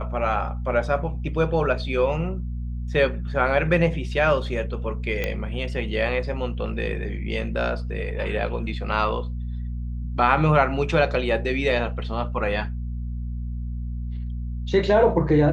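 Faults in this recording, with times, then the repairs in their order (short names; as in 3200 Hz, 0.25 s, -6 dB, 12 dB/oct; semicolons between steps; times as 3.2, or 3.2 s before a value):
hum 60 Hz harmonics 4 -29 dBFS
5.24 pop -12 dBFS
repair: de-click; de-hum 60 Hz, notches 4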